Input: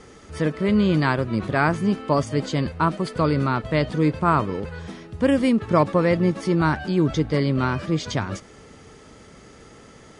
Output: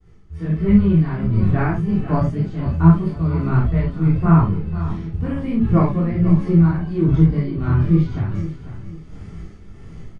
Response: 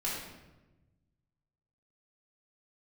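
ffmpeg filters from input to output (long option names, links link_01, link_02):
-filter_complex "[0:a]agate=range=-33dB:threshold=-39dB:ratio=3:detection=peak,bass=frequency=250:gain=13,treble=frequency=4000:gain=-5,flanger=delay=17.5:depth=7:speed=1.6,lowshelf=frequency=89:gain=11.5,dynaudnorm=framelen=270:gausssize=3:maxgain=12.5dB,tremolo=f=1.4:d=0.62,acrossover=split=2600[link_01][link_02];[link_02]acompressor=threshold=-52dB:ratio=4:attack=1:release=60[link_03];[link_01][link_03]amix=inputs=2:normalize=0,aecho=1:1:495|990|1485:0.224|0.0784|0.0274[link_04];[1:a]atrim=start_sample=2205,atrim=end_sample=3528[link_05];[link_04][link_05]afir=irnorm=-1:irlink=0,volume=-5dB"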